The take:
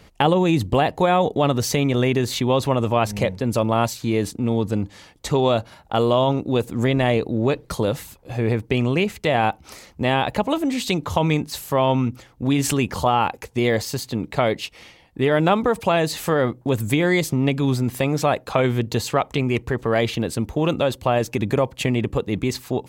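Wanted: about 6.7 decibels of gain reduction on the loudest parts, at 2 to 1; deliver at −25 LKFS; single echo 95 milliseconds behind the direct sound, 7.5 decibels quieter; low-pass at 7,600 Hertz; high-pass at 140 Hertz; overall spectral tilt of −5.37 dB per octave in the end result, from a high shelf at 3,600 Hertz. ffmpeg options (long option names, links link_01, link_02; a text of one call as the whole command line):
ffmpeg -i in.wav -af "highpass=140,lowpass=7600,highshelf=frequency=3600:gain=-7.5,acompressor=threshold=-26dB:ratio=2,aecho=1:1:95:0.422,volume=2.5dB" out.wav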